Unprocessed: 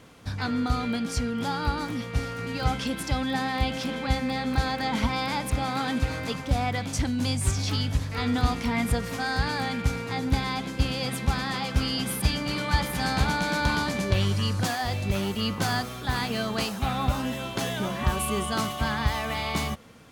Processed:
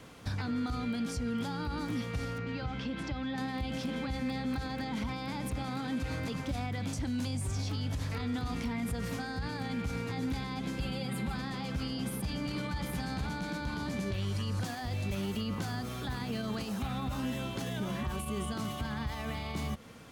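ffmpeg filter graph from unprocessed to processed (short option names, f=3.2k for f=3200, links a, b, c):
-filter_complex "[0:a]asettb=1/sr,asplit=3[a][b][c];[a]atrim=end=2.384[d];[b]atrim=start=2.38:end=3.38,asetpts=PTS-STARTPTS,afade=t=in:d=0.004:c=qsin,afade=t=out:st=0.996:d=0.004:c=qsin,lowpass=3.8k,acompressor=threshold=-32dB:ratio=3:attack=3.2:release=140:knee=1:detection=peak[e];[c]atrim=start=3.376[f];[d][e]acrossfade=d=0.004:c1=hsin:c2=qsin[g];[g][f]acrossfade=d=0.004:c1=qsin:c2=hsin,asettb=1/sr,asplit=3[h][i][j];[h]atrim=end=10.804[k];[i]atrim=start=10.8:end=11.36,asetpts=PTS-STARTPTS,afade=t=in:d=0.004:c=qsin,afade=t=out:st=0.556:d=0.004:c=qsin,equalizer=f=5.9k:w=4.3:g=-12,aecho=1:1:5.2:0.71,atrim=end_sample=24696[l];[j]atrim=start=11.356[m];[k][l]acrossfade=d=0.004:c1=hsin:c2=qsin[n];[n][m]acrossfade=d=0.004:c1=qsin:c2=hsin,alimiter=limit=-23dB:level=0:latency=1:release=50,acrossover=split=400|1000[o][p][q];[o]acompressor=threshold=-31dB:ratio=4[r];[p]acompressor=threshold=-48dB:ratio=4[s];[q]acompressor=threshold=-43dB:ratio=4[t];[r][s][t]amix=inputs=3:normalize=0"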